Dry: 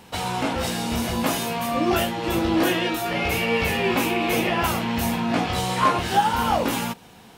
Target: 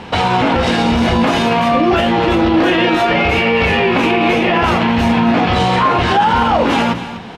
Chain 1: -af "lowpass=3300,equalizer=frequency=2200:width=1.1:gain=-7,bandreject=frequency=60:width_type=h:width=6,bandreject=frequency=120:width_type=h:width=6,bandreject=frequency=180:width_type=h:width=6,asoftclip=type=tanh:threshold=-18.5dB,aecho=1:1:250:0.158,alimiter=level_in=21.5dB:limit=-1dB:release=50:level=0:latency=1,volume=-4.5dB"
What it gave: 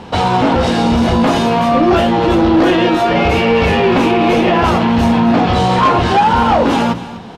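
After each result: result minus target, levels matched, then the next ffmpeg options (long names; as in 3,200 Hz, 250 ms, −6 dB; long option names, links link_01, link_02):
soft clipping: distortion +16 dB; 2,000 Hz band −4.0 dB
-af "lowpass=3300,equalizer=frequency=2200:width=1.1:gain=-7,bandreject=frequency=60:width_type=h:width=6,bandreject=frequency=120:width_type=h:width=6,bandreject=frequency=180:width_type=h:width=6,asoftclip=type=tanh:threshold=-6.5dB,aecho=1:1:250:0.158,alimiter=level_in=21.5dB:limit=-1dB:release=50:level=0:latency=1,volume=-4.5dB"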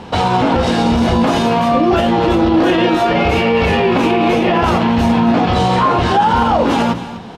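2,000 Hz band −4.0 dB
-af "lowpass=3300,bandreject=frequency=60:width_type=h:width=6,bandreject=frequency=120:width_type=h:width=6,bandreject=frequency=180:width_type=h:width=6,asoftclip=type=tanh:threshold=-6.5dB,aecho=1:1:250:0.158,alimiter=level_in=21.5dB:limit=-1dB:release=50:level=0:latency=1,volume=-4.5dB"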